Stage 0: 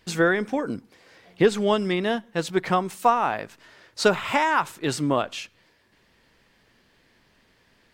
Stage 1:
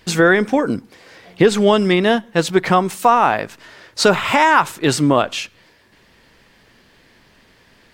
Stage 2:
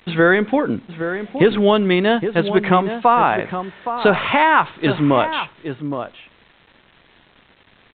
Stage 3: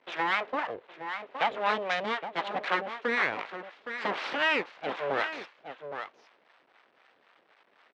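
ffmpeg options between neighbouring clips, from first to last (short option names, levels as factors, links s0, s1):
-af "alimiter=level_in=3.35:limit=0.891:release=50:level=0:latency=1,volume=0.891"
-filter_complex "[0:a]aresample=8000,acrusher=bits=7:mix=0:aa=0.000001,aresample=44100,asplit=2[s0][s1];[s1]adelay=816.3,volume=0.355,highshelf=f=4000:g=-18.4[s2];[s0][s2]amix=inputs=2:normalize=0,volume=0.891"
-filter_complex "[0:a]aeval=exprs='abs(val(0))':c=same,acrossover=split=630[s0][s1];[s0]aeval=exprs='val(0)*(1-0.7/2+0.7/2*cos(2*PI*3.9*n/s))':c=same[s2];[s1]aeval=exprs='val(0)*(1-0.7/2-0.7/2*cos(2*PI*3.9*n/s))':c=same[s3];[s2][s3]amix=inputs=2:normalize=0,highpass=470,lowpass=2900,volume=0.668"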